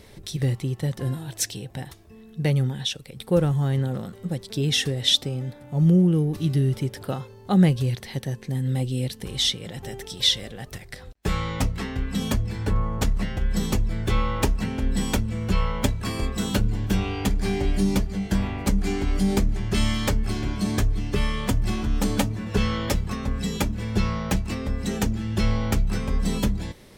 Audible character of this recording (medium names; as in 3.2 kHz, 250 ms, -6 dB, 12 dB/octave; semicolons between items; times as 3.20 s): noise floor -47 dBFS; spectral tilt -5.5 dB/octave